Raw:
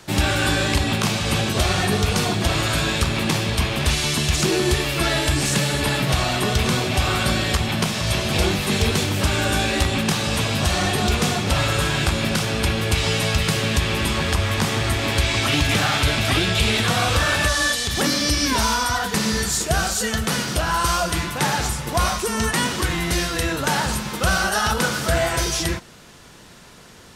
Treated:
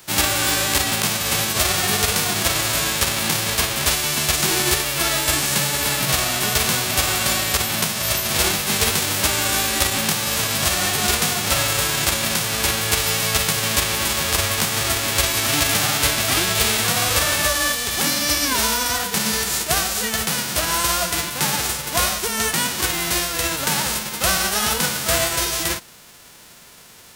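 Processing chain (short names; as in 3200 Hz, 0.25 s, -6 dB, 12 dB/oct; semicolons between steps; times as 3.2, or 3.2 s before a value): spectral whitening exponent 0.3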